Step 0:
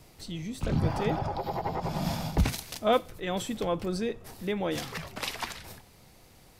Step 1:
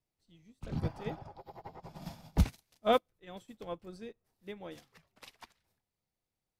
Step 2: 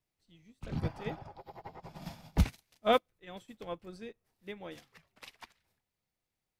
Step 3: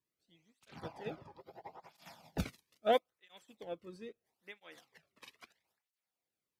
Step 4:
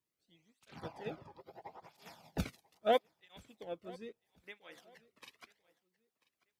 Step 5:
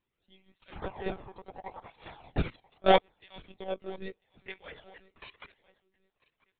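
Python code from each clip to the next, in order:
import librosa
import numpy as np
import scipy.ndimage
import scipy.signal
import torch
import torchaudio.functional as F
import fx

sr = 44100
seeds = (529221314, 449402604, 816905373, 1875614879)

y1 = fx.upward_expand(x, sr, threshold_db=-42.0, expansion=2.5)
y2 = fx.peak_eq(y1, sr, hz=2200.0, db=4.0, octaves=1.4)
y3 = fx.flanger_cancel(y2, sr, hz=0.76, depth_ms=1.5)
y3 = F.gain(torch.from_numpy(y3), -1.5).numpy()
y4 = fx.echo_feedback(y3, sr, ms=990, feedback_pct=26, wet_db=-22.5)
y5 = fx.lpc_monotone(y4, sr, seeds[0], pitch_hz=190.0, order=16)
y5 = F.gain(torch.from_numpy(y5), 8.0).numpy()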